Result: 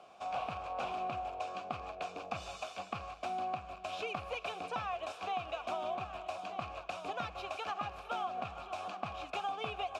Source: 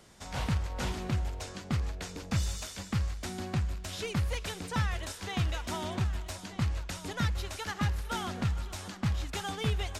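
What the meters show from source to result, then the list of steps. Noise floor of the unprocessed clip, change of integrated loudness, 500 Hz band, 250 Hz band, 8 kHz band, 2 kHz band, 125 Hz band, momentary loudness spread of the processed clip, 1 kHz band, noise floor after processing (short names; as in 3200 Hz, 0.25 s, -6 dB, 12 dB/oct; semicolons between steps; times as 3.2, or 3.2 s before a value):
-46 dBFS, -5.5 dB, +0.5 dB, -14.0 dB, -16.0 dB, -4.5 dB, -21.0 dB, 5 LU, +4.0 dB, -52 dBFS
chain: vowel filter a; compressor 6:1, threshold -48 dBFS, peak gain reduction 9.5 dB; gain +14 dB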